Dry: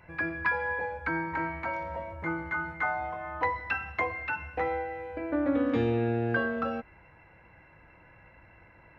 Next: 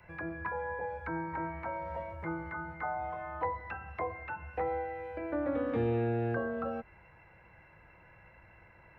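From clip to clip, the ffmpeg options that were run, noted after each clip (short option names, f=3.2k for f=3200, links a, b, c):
-filter_complex "[0:a]acrossover=split=2700[a][b];[b]acompressor=threshold=-59dB:ratio=4:attack=1:release=60[c];[a][c]amix=inputs=2:normalize=0,equalizer=f=270:t=o:w=0.33:g=-8,acrossover=split=200|510|1100[d][e][f][g];[g]acompressor=threshold=-45dB:ratio=6[h];[d][e][f][h]amix=inputs=4:normalize=0,volume=-2dB"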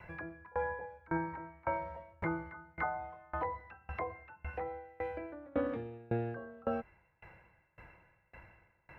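-af "alimiter=level_in=4dB:limit=-24dB:level=0:latency=1:release=61,volume=-4dB,aeval=exprs='val(0)*pow(10,-28*if(lt(mod(1.8*n/s,1),2*abs(1.8)/1000),1-mod(1.8*n/s,1)/(2*abs(1.8)/1000),(mod(1.8*n/s,1)-2*abs(1.8)/1000)/(1-2*abs(1.8)/1000))/20)':c=same,volume=6.5dB"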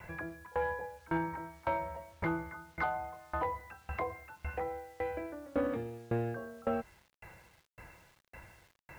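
-af "asoftclip=type=tanh:threshold=-25.5dB,acrusher=bits=10:mix=0:aa=0.000001,volume=3dB"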